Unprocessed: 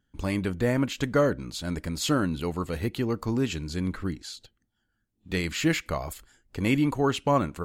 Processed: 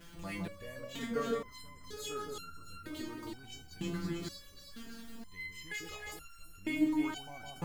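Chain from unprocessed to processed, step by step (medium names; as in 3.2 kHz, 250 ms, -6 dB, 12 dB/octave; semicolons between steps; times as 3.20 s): jump at every zero crossing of -36 dBFS; echo whose repeats swap between lows and highs 161 ms, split 1.2 kHz, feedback 74%, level -2.5 dB; resonator arpeggio 2.1 Hz 170–1400 Hz; trim +1.5 dB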